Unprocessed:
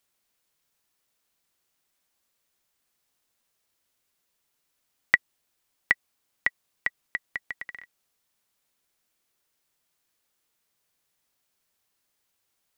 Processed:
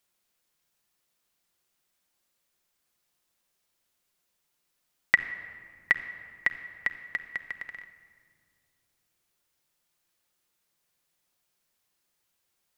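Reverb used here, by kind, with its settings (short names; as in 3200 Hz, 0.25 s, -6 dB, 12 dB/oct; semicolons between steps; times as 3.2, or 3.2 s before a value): shoebox room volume 3800 m³, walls mixed, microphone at 0.9 m; gain -1.5 dB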